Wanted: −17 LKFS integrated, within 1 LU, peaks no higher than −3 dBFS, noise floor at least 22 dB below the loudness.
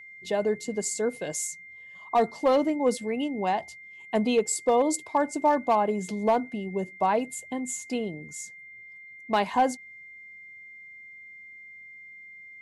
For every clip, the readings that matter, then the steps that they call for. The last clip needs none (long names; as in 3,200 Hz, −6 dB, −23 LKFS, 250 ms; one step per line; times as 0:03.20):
share of clipped samples 0.2%; peaks flattened at −14.5 dBFS; interfering tone 2,100 Hz; level of the tone −44 dBFS; integrated loudness −27.0 LKFS; sample peak −14.5 dBFS; target loudness −17.0 LKFS
→ clipped peaks rebuilt −14.5 dBFS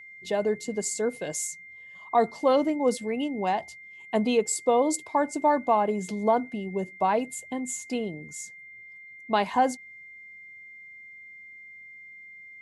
share of clipped samples 0.0%; interfering tone 2,100 Hz; level of the tone −44 dBFS
→ notch filter 2,100 Hz, Q 30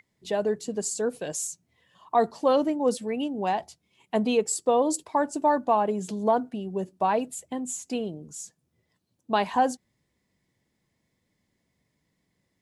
interfering tone none found; integrated loudness −27.0 LKFS; sample peak −10.0 dBFS; target loudness −17.0 LKFS
→ level +10 dB
brickwall limiter −3 dBFS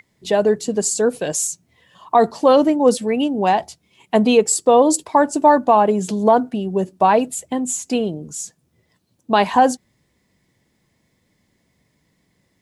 integrated loudness −17.5 LKFS; sample peak −3.0 dBFS; background noise floor −66 dBFS